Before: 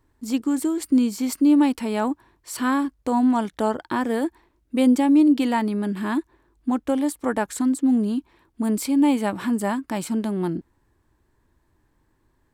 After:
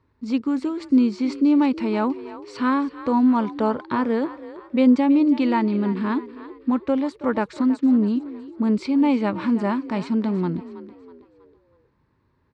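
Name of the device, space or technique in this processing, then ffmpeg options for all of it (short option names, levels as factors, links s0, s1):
frequency-shifting delay pedal into a guitar cabinet: -filter_complex "[0:a]asplit=5[s0][s1][s2][s3][s4];[s1]adelay=323,afreqshift=39,volume=0.178[s5];[s2]adelay=646,afreqshift=78,volume=0.075[s6];[s3]adelay=969,afreqshift=117,volume=0.0313[s7];[s4]adelay=1292,afreqshift=156,volume=0.0132[s8];[s0][s5][s6][s7][s8]amix=inputs=5:normalize=0,highpass=76,equalizer=f=320:t=q:w=4:g=-7,equalizer=f=730:t=q:w=4:g=-9,equalizer=f=1700:t=q:w=4:g=-6,equalizer=f=3200:t=q:w=4:g=-8,lowpass=f=4200:w=0.5412,lowpass=f=4200:w=1.3066,volume=1.5"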